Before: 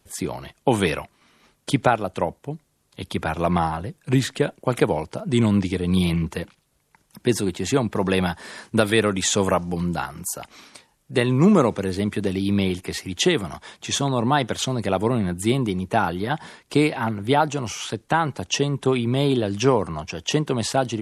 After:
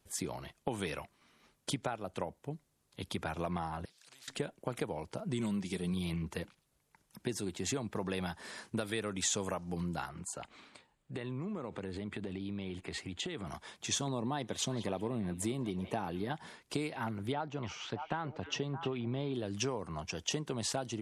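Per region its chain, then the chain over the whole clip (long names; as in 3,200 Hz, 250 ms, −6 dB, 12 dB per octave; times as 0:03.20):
0:03.85–0:04.28: downward compressor 1.5 to 1, threshold −50 dBFS + resonant band-pass 4,300 Hz, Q 4.8 + every bin compressed towards the loudest bin 4 to 1
0:05.39–0:05.94: high-shelf EQ 5,900 Hz +9.5 dB + comb filter 5.3 ms, depth 54%
0:10.09–0:13.47: low-pass filter 7,800 Hz 24 dB per octave + parametric band 5,700 Hz −13.5 dB 0.46 octaves + downward compressor 12 to 1, threshold −26 dBFS
0:14.07–0:16.33: parametric band 280 Hz +4 dB 2.3 octaves + notch filter 1,400 Hz, Q 8.4 + echo through a band-pass that steps 184 ms, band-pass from 3,200 Hz, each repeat −0.7 octaves, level −10 dB
0:17.32–0:19.34: high-frequency loss of the air 190 metres + echo through a band-pass that steps 308 ms, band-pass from 2,700 Hz, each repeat −1.4 octaves, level −8.5 dB
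whole clip: downward compressor 5 to 1, threshold −24 dBFS; dynamic equaliser 6,600 Hz, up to +5 dB, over −45 dBFS, Q 0.98; level −9 dB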